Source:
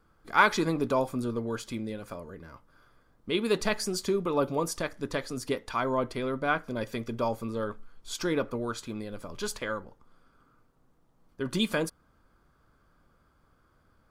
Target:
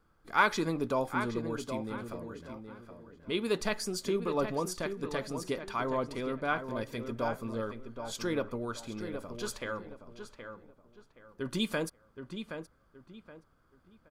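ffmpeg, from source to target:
ffmpeg -i in.wav -filter_complex "[0:a]asplit=2[link_01][link_02];[link_02]adelay=772,lowpass=frequency=2800:poles=1,volume=-8dB,asplit=2[link_03][link_04];[link_04]adelay=772,lowpass=frequency=2800:poles=1,volume=0.3,asplit=2[link_05][link_06];[link_06]adelay=772,lowpass=frequency=2800:poles=1,volume=0.3,asplit=2[link_07][link_08];[link_08]adelay=772,lowpass=frequency=2800:poles=1,volume=0.3[link_09];[link_01][link_03][link_05][link_07][link_09]amix=inputs=5:normalize=0,volume=-4dB" out.wav

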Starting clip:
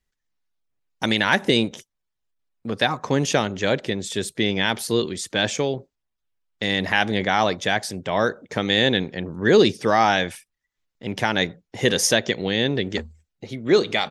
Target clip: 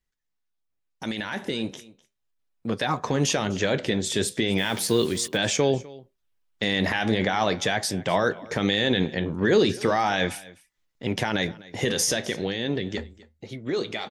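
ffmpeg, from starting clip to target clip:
ffmpeg -i in.wav -filter_complex "[0:a]alimiter=limit=-14.5dB:level=0:latency=1:release=34,flanger=delay=5.7:depth=9:regen=-71:speed=0.37:shape=triangular,asplit=3[link_01][link_02][link_03];[link_01]afade=type=out:start_time=4.57:duration=0.02[link_04];[link_02]acrusher=bits=7:mix=0:aa=0.5,afade=type=in:start_time=4.57:duration=0.02,afade=type=out:start_time=5.36:duration=0.02[link_05];[link_03]afade=type=in:start_time=5.36:duration=0.02[link_06];[link_04][link_05][link_06]amix=inputs=3:normalize=0,dynaudnorm=framelen=400:gausssize=13:maxgain=7.5dB,aecho=1:1:252:0.0891" out.wav

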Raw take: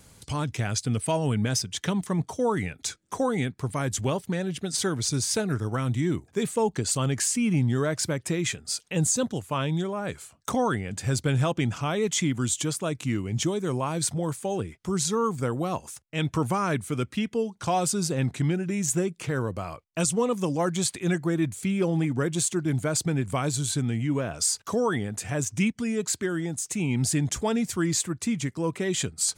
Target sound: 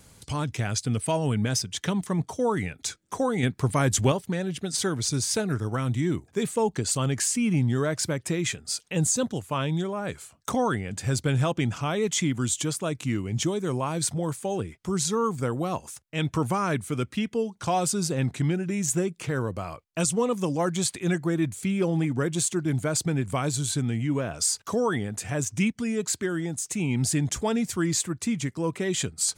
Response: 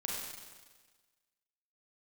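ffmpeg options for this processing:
-filter_complex "[0:a]asettb=1/sr,asplit=3[link_01][link_02][link_03];[link_01]atrim=end=3.434[link_04];[link_02]atrim=start=3.43:end=4.12,asetpts=PTS-STARTPTS,afade=type=in:duration=0.004:curve=qsin,afade=type=out:start_time=0.686:duration=0.004:curve=qsin,acontrast=36[link_05];[link_03]atrim=start=4.116[link_06];[link_04][link_05]acrossfade=duration=0.004:curve1=hsin:curve2=qsin[link_07];[link_07][link_06]acrossfade=duration=0.004:curve1=qsin:curve2=hsin"

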